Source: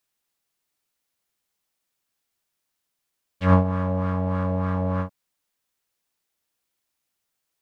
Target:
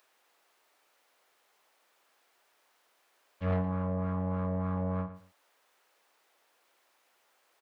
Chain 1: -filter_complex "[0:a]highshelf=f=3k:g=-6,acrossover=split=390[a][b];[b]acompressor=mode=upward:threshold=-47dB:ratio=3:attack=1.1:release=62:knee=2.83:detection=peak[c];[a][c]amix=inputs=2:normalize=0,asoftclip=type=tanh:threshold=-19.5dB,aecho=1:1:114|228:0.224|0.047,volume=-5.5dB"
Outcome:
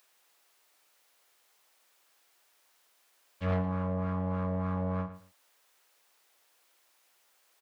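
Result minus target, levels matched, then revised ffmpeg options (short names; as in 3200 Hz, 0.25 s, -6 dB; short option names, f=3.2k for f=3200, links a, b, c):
8000 Hz band +5.5 dB
-filter_complex "[0:a]highshelf=f=3k:g=-17.5,acrossover=split=390[a][b];[b]acompressor=mode=upward:threshold=-47dB:ratio=3:attack=1.1:release=62:knee=2.83:detection=peak[c];[a][c]amix=inputs=2:normalize=0,asoftclip=type=tanh:threshold=-19.5dB,aecho=1:1:114|228:0.224|0.047,volume=-5.5dB"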